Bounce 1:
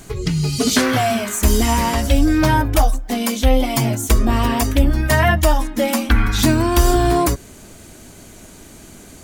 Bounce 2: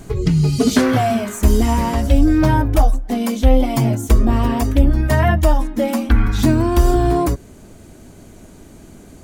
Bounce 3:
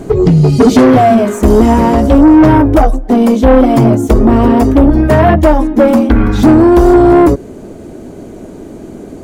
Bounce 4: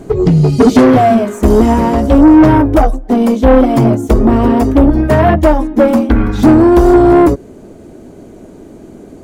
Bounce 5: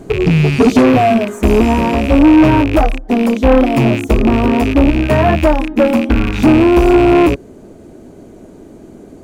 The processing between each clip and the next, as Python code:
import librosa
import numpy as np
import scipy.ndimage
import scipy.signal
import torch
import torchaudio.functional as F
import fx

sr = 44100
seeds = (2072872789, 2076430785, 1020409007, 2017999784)

y1 = fx.tilt_shelf(x, sr, db=5.0, hz=1100.0)
y1 = fx.rider(y1, sr, range_db=10, speed_s=2.0)
y1 = y1 * librosa.db_to_amplitude(-3.0)
y2 = fx.peak_eq(y1, sr, hz=400.0, db=13.5, octaves=2.4)
y2 = 10.0 ** (-5.0 / 20.0) * np.tanh(y2 / 10.0 ** (-5.0 / 20.0))
y2 = fx.high_shelf(y2, sr, hz=7000.0, db=-4.5)
y2 = y2 * librosa.db_to_amplitude(4.0)
y3 = fx.upward_expand(y2, sr, threshold_db=-14.0, expansion=1.5)
y4 = fx.rattle_buzz(y3, sr, strikes_db=-19.0, level_db=-9.0)
y4 = y4 * librosa.db_to_amplitude(-2.5)